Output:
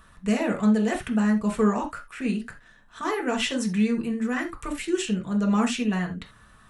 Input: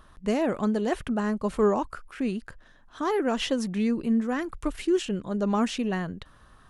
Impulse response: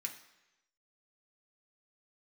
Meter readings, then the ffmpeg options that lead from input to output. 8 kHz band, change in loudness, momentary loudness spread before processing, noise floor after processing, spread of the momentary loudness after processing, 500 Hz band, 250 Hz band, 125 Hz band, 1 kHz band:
+6.0 dB, +2.0 dB, 7 LU, −55 dBFS, 10 LU, −2.0 dB, +3.0 dB, +5.0 dB, +0.5 dB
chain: -filter_complex "[1:a]atrim=start_sample=2205,atrim=end_sample=3969[link_01];[0:a][link_01]afir=irnorm=-1:irlink=0,volume=5.5dB"

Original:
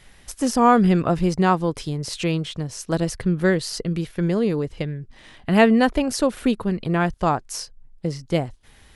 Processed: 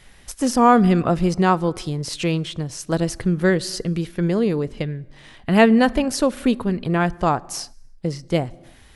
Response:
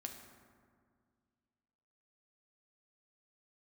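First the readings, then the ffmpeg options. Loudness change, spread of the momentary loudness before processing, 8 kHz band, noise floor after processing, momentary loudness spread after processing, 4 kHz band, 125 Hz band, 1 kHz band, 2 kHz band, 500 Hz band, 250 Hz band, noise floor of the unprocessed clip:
+1.5 dB, 14 LU, +1.0 dB, −48 dBFS, 15 LU, +1.0 dB, +1.0 dB, +1.5 dB, +1.0 dB, +1.5 dB, +1.5 dB, −52 dBFS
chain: -filter_complex "[0:a]asplit=2[link_01][link_02];[1:a]atrim=start_sample=2205,afade=type=out:start_time=0.41:duration=0.01,atrim=end_sample=18522[link_03];[link_02][link_03]afir=irnorm=-1:irlink=0,volume=-11.5dB[link_04];[link_01][link_04]amix=inputs=2:normalize=0"

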